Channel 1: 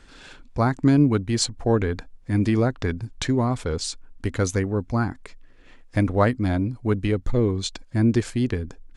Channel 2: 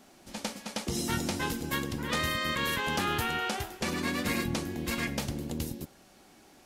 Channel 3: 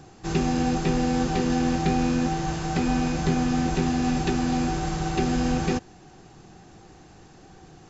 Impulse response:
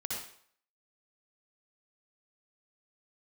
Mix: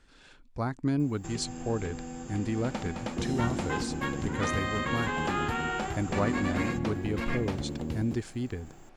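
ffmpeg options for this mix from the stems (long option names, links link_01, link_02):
-filter_complex "[0:a]volume=-10.5dB[link_01];[1:a]lowpass=1600,aemphasis=mode=production:type=75fm,adelay=2300,volume=1.5dB[link_02];[2:a]bandreject=frequency=4100:width=6,acompressor=threshold=-32dB:ratio=4,aexciter=amount=16:drive=7:freq=8500,adelay=1000,volume=-7dB[link_03];[link_01][link_02][link_03]amix=inputs=3:normalize=0"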